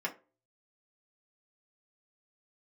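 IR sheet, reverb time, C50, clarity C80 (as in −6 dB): 0.35 s, 15.5 dB, 22.0 dB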